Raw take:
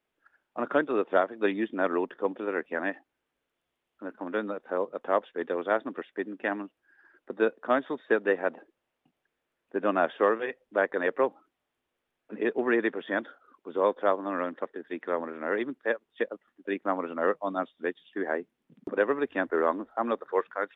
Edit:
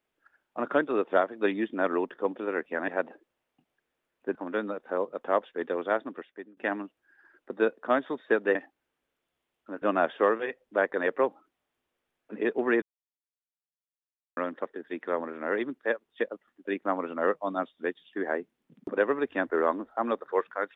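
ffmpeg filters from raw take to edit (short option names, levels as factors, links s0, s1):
-filter_complex "[0:a]asplit=8[s0][s1][s2][s3][s4][s5][s6][s7];[s0]atrim=end=2.882[s8];[s1]atrim=start=8.348:end=9.822[s9];[s2]atrim=start=4.148:end=6.37,asetpts=PTS-STARTPTS,afade=t=out:st=1.312:d=0.91:c=qsin:silence=0.0630957[s10];[s3]atrim=start=6.37:end=8.352,asetpts=PTS-STARTPTS,afade=t=in:d=0.004:c=hsin:silence=0.0630957[s11];[s4]atrim=start=2.878:end=4.152[s12];[s5]atrim=start=9.818:end=12.82,asetpts=PTS-STARTPTS,afade=t=out:st=2.998:d=0.004:c=hsin[s13];[s6]atrim=start=12.82:end=14.37,asetpts=PTS-STARTPTS,volume=0[s14];[s7]atrim=start=14.37,asetpts=PTS-STARTPTS,afade=t=in:d=0.004:c=hsin[s15];[s8][s9]acrossfade=d=0.004:c1=hsin:c2=hsin[s16];[s10][s11]concat=n=2:v=0:a=1[s17];[s16][s17]acrossfade=d=0.004:c1=hsin:c2=hsin[s18];[s18][s12]acrossfade=d=0.004:c1=hsin:c2=hsin[s19];[s13][s14][s15]concat=n=3:v=0:a=1[s20];[s19][s20]acrossfade=d=0.004:c1=hsin:c2=hsin"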